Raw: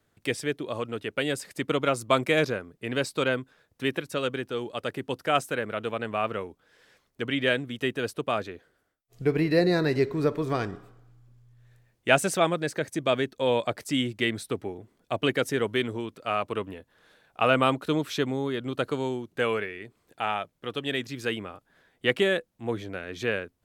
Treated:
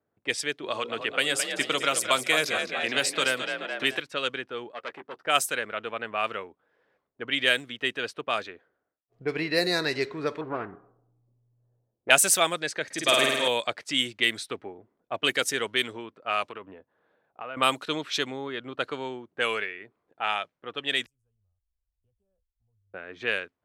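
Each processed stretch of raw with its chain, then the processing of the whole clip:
0:00.63–0:03.99: mains-hum notches 60/120/180/240/300/360/420/480/540 Hz + echo with shifted repeats 214 ms, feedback 55%, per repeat +42 Hz, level −9 dB + multiband upward and downward compressor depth 70%
0:04.72–0:05.23: high-pass filter 290 Hz 6 dB per octave + double-tracking delay 13 ms −9.5 dB + saturating transformer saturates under 2,500 Hz
0:10.41–0:12.10: low-pass filter 1,400 Hz + low-pass that shuts in the quiet parts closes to 710 Hz, open at −27 dBFS + highs frequency-modulated by the lows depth 0.36 ms
0:12.85–0:13.48: high-shelf EQ 2,300 Hz +3 dB + flutter between parallel walls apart 8.9 metres, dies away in 1.4 s
0:16.49–0:17.57: high-pass filter 48 Hz + high-shelf EQ 8,500 Hz −10 dB + downward compressor, threshold −31 dBFS
0:21.06–0:22.94: inverse Chebyshev band-stop filter 140–4,300 Hz, stop band 50 dB + spectral tilt −3.5 dB per octave + multiband upward and downward compressor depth 100%
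whole clip: spectral tilt +4 dB per octave; low-pass that shuts in the quiet parts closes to 670 Hz, open at −20 dBFS

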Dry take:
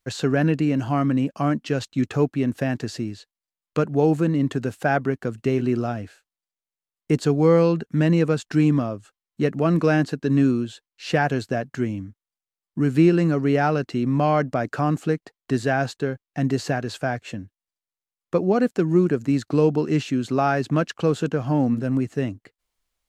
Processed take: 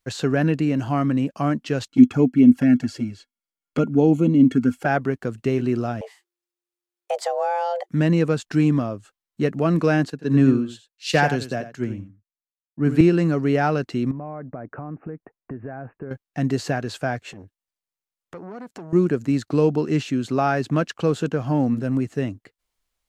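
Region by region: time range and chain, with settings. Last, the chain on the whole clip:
0:01.88–0:04.86: flanger swept by the level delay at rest 6.8 ms, full sweep at −17.5 dBFS + notch filter 3,700 Hz, Q 7 + hollow resonant body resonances 250/1,400/2,200/3,300 Hz, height 14 dB, ringing for 70 ms
0:06.01–0:07.89: downward compressor 4 to 1, threshold −20 dBFS + frequency shifter +350 Hz
0:10.10–0:13.01: single-tap delay 88 ms −9.5 dB + multiband upward and downward expander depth 100%
0:14.11–0:16.11: downward compressor, threshold −29 dBFS + Gaussian smoothing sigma 5 samples + bad sample-rate conversion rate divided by 8×, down none, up filtered
0:17.28–0:18.93: downward compressor 5 to 1, threshold −32 dBFS + saturating transformer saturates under 890 Hz
whole clip: no processing

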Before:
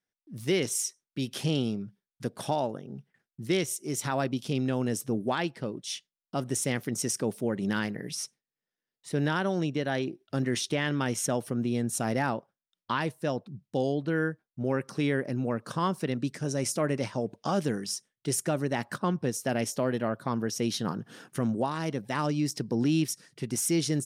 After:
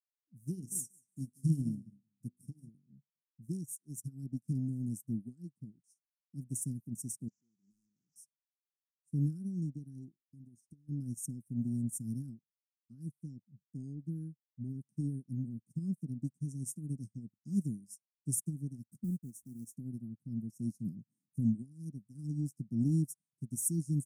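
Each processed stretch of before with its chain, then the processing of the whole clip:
0:00.53–0:02.69: parametric band 3,100 Hz +6.5 dB 0.46 octaves + hum removal 49.5 Hz, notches 38 + repeating echo 184 ms, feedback 28%, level −11 dB
0:07.28–0:08.16: linear delta modulator 32 kbit/s, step −32 dBFS + high-pass filter 1,300 Hz 6 dB per octave + hard clipping −29.5 dBFS
0:10.25–0:10.89: downward compressor 12 to 1, threshold −30 dBFS + notch comb filter 700 Hz
0:19.04–0:19.73: hold until the input has moved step −44 dBFS + high-pass filter 150 Hz 6 dB per octave + highs frequency-modulated by the lows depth 0.18 ms
whole clip: inverse Chebyshev band-stop filter 550–3,700 Hz, stop band 50 dB; expander for the loud parts 2.5 to 1, over −49 dBFS; level +3.5 dB

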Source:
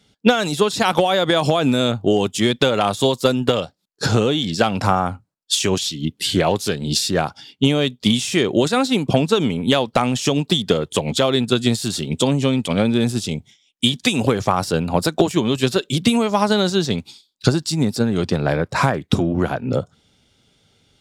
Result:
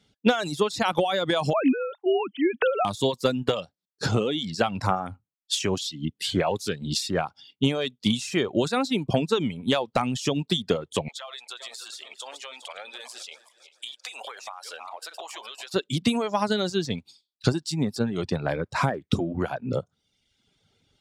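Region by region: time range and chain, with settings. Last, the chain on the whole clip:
0:01.53–0:02.85: three sine waves on the formant tracks + dynamic equaliser 1,600 Hz, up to +3 dB, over −31 dBFS, Q 0.86
0:11.08–0:15.74: feedback delay that plays each chunk backwards 201 ms, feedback 53%, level −12.5 dB + high-pass filter 690 Hz 24 dB per octave + downward compressor 10 to 1, threshold −26 dBFS
whole clip: high-shelf EQ 10,000 Hz −8 dB; reverb reduction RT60 0.89 s; level −6 dB

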